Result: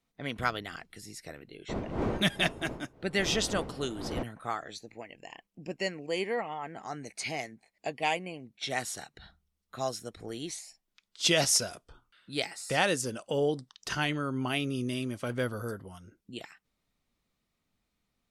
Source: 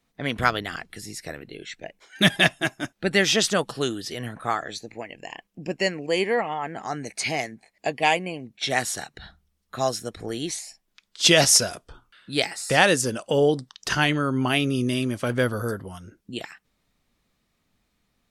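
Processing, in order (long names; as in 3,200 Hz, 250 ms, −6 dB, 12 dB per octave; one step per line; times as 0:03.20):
0:01.68–0:04.22: wind on the microphone 470 Hz −25 dBFS
notch filter 1,700 Hz, Q 19
level −8.5 dB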